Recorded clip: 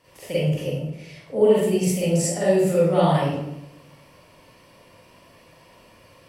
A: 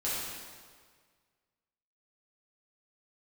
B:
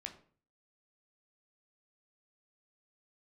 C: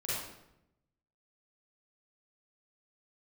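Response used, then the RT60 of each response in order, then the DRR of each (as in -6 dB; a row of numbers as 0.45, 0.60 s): C; 1.7, 0.45, 0.85 s; -9.5, 3.5, -10.0 dB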